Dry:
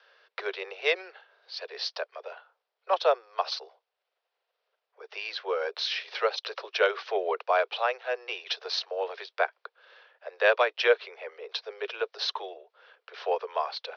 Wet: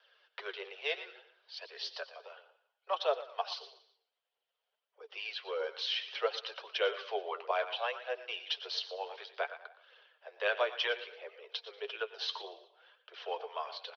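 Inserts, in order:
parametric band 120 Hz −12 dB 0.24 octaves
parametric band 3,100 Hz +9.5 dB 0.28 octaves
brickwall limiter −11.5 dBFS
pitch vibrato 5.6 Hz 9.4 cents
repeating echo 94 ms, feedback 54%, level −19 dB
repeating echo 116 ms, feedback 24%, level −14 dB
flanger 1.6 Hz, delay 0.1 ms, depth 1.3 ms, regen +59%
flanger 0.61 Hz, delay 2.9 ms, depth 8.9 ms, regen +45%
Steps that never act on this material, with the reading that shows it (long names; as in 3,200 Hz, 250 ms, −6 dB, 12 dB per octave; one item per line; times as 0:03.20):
parametric band 120 Hz: nothing at its input below 320 Hz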